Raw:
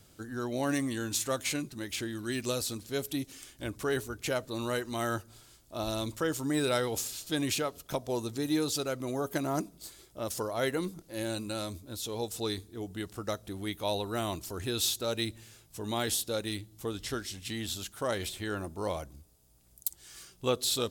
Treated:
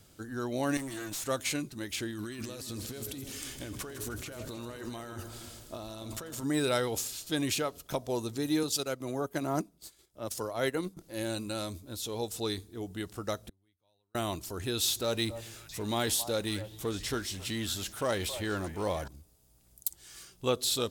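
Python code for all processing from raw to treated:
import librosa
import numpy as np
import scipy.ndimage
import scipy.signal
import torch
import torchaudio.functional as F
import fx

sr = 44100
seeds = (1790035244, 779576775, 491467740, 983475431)

y = fx.chain(x, sr, fx.high_shelf(hz=5600.0, db=6.0),
    fx.comb(ms=6.2, depth=0.8),
    fx.tube_stage(drive_db=35.0, bias=0.8), at=(0.77, 1.24))
y = fx.chain(y, sr, fx.over_compress(threshold_db=-42.0, ratio=-1.0),
    fx.transient(attack_db=-2, sustain_db=6),
    fx.echo_split(split_hz=690.0, low_ms=282, high_ms=156, feedback_pct=52, wet_db=-10.0), at=(2.1, 6.43))
y = fx.chain(y, sr, fx.transient(attack_db=-2, sustain_db=-9),
    fx.band_widen(depth_pct=40), at=(8.63, 10.97))
y = fx.chain(y, sr, fx.peak_eq(hz=89.0, db=12.0, octaves=0.37),
    fx.gate_flip(shuts_db=-36.0, range_db=-39),
    fx.band_widen(depth_pct=40), at=(13.49, 14.15))
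y = fx.chain(y, sr, fx.law_mismatch(coded='mu'),
    fx.echo_stepped(ms=270, hz=750.0, octaves=1.4, feedback_pct=70, wet_db=-9.5), at=(14.88, 19.08))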